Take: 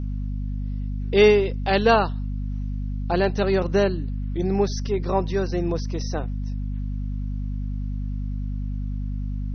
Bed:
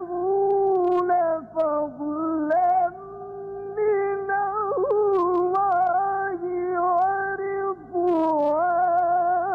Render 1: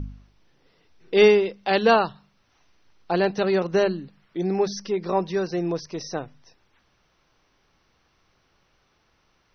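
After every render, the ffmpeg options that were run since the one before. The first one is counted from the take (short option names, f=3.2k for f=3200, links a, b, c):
-af "bandreject=f=50:t=h:w=4,bandreject=f=100:t=h:w=4,bandreject=f=150:t=h:w=4,bandreject=f=200:t=h:w=4,bandreject=f=250:t=h:w=4"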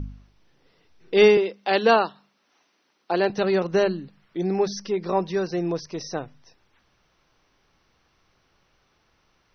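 -filter_complex "[0:a]asettb=1/sr,asplit=3[a][b][c];[a]atrim=end=1.374[d];[b]atrim=start=1.37:end=3.3,asetpts=PTS-STARTPTS,afade=t=in:d=0.004:c=qsin,afade=t=out:st=1.926:d=0.004:c=qsin,highpass=f=210:w=0.5412,highpass=f=210:w=1.3066[e];[c]atrim=start=3.296[f];[d][e]acrossfade=d=0.004:c1=hsin:c2=qsin[g];[g][f]acrossfade=d=0.004:c1=qsin:c2=hsin"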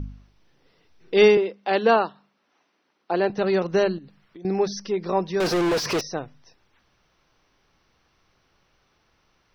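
-filter_complex "[0:a]asettb=1/sr,asplit=3[a][b][c];[a]atrim=end=1.354[d];[b]atrim=start=1.35:end=3.46,asetpts=PTS-STARTPTS,afade=t=in:d=0.004:c=qsin,afade=t=out:st=2.106:d=0.004:c=qsin,highshelf=f=3.7k:g=-10[e];[c]atrim=start=3.456[f];[d][e]acrossfade=d=0.004:c1=hsin:c2=qsin[g];[g][f]acrossfade=d=0.004:c1=qsin:c2=hsin,asettb=1/sr,asplit=3[h][i][j];[h]atrim=end=3.984[k];[i]atrim=start=3.98:end=4.45,asetpts=PTS-STARTPTS,afade=t=in:d=0.004:c=qsin,afade=t=out:st=0.466:d=0.004:c=qsin,acompressor=threshold=-40dB:ratio=10:attack=3.2:release=140:knee=1:detection=peak[l];[j]atrim=start=4.446[m];[k][l]acrossfade=d=0.004:c1=hsin:c2=qsin[n];[n][m]acrossfade=d=0.004:c1=qsin:c2=hsin,asettb=1/sr,asplit=3[o][p][q];[o]atrim=end=5.404[r];[p]atrim=start=5.4:end=6.01,asetpts=PTS-STARTPTS,afade=t=in:d=0.004:c=qsin,afade=t=out:st=0.606:d=0.004:c=qsin,asplit=2[s][t];[t]highpass=f=720:p=1,volume=41dB,asoftclip=type=tanh:threshold=-15.5dB[u];[s][u]amix=inputs=2:normalize=0,lowpass=f=2.6k:p=1,volume=-6dB[v];[q]atrim=start=6.006[w];[r][v]acrossfade=d=0.004:c1=hsin:c2=qsin[x];[x][w]acrossfade=d=0.004:c1=qsin:c2=hsin"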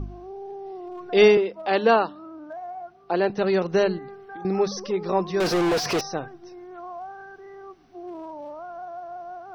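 -filter_complex "[1:a]volume=-16dB[a];[0:a][a]amix=inputs=2:normalize=0"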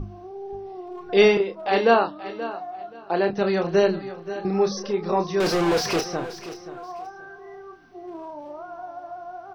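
-filter_complex "[0:a]asplit=2[a][b];[b]adelay=30,volume=-7dB[c];[a][c]amix=inputs=2:normalize=0,aecho=1:1:529|1058:0.2|0.0439"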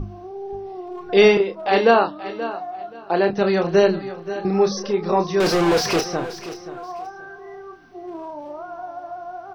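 -af "volume=3.5dB,alimiter=limit=-3dB:level=0:latency=1"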